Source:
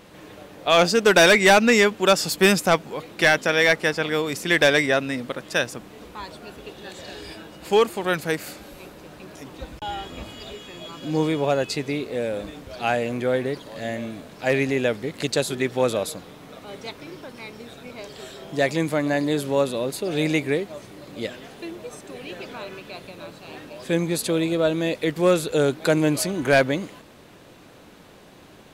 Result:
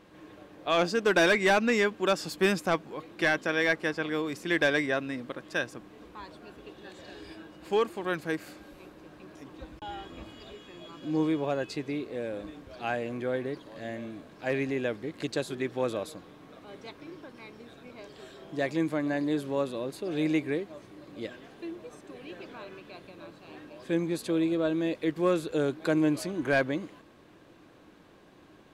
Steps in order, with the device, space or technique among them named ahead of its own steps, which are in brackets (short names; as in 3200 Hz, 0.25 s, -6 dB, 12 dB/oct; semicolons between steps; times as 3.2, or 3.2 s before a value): inside a helmet (high shelf 5700 Hz -8.5 dB; small resonant body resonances 320/1100/1600 Hz, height 7 dB); gain -9 dB